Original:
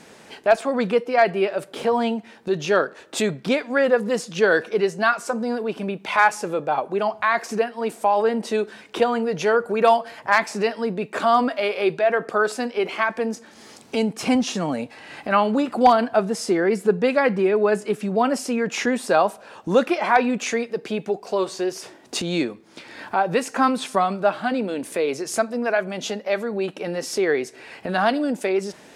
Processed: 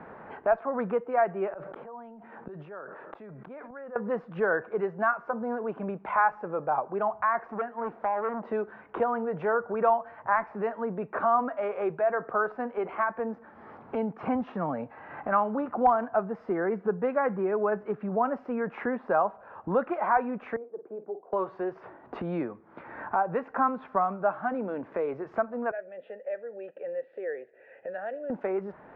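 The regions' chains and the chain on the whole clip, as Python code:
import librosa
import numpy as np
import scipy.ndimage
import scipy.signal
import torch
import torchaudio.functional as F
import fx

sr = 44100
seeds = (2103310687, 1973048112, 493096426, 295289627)

y = fx.chain(x, sr, fx.highpass(hz=130.0, slope=24),
    fx.gate_flip(shuts_db=-24.0, range_db=-24),
    fx.sustainer(db_per_s=24.0), at=(1.51, 3.96))
y = fx.chain(y, sr, fx.dynamic_eq(hz=940.0, q=0.91, threshold_db=-28.0, ratio=4.0, max_db=-4),
    fx.lowpass(hz=10000.0, slope=12),
    fx.transformer_sat(knee_hz=1400.0), at=(7.42, 8.45))
y = fx.chain(y, sr, fx.ladder_bandpass(hz=430.0, resonance_pct=40),
    fx.doubler(ms=49.0, db=-11), at=(20.56, 21.33))
y = fx.chain(y, sr, fx.vowel_filter(vowel='e'),
    fx.high_shelf_res(hz=5600.0, db=-14.0, q=3.0), at=(25.71, 28.3))
y = scipy.signal.sosfilt(scipy.signal.butter(4, 1300.0, 'lowpass', fs=sr, output='sos'), y)
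y = fx.peak_eq(y, sr, hz=290.0, db=-12.5, octaves=2.9)
y = fx.band_squash(y, sr, depth_pct=40)
y = y * librosa.db_to_amplitude(2.0)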